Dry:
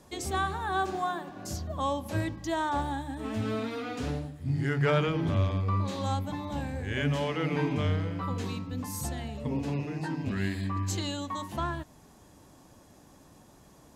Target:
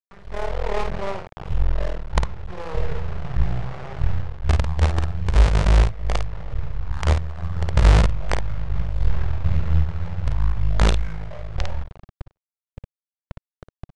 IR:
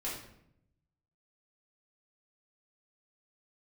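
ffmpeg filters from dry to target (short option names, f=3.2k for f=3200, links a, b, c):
-filter_complex "[0:a]asplit=2[a][b];[b]adelay=200,lowpass=f=3.5k:p=1,volume=-22dB,asplit=2[c][d];[d]adelay=200,lowpass=f=3.5k:p=1,volume=0.21[e];[a][c][e]amix=inputs=3:normalize=0,asubboost=boost=10.5:cutoff=140,acrusher=bits=3:dc=4:mix=0:aa=0.000001,adynamicsmooth=sensitivity=7.5:basefreq=780,asplit=2[f][g];[g]adelay=49,volume=-6dB[h];[f][h]amix=inputs=2:normalize=0,dynaudnorm=f=120:g=7:m=14dB,equalizer=f=480:w=2.1:g=-15,asetrate=24046,aresample=44100,atempo=1.83401,volume=-3.5dB"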